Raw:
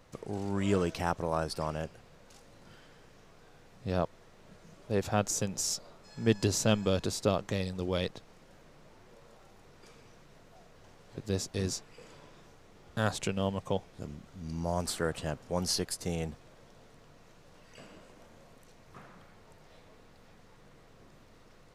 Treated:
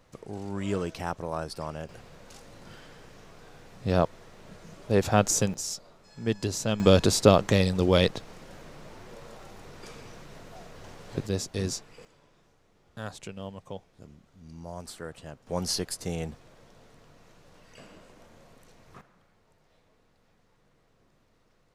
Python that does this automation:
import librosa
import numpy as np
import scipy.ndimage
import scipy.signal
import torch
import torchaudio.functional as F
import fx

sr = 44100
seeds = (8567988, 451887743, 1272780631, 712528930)

y = fx.gain(x, sr, db=fx.steps((0.0, -1.5), (1.89, 7.0), (5.54, -1.5), (6.8, 10.5), (11.27, 2.5), (12.05, -8.0), (15.47, 1.5), (19.01, -9.0)))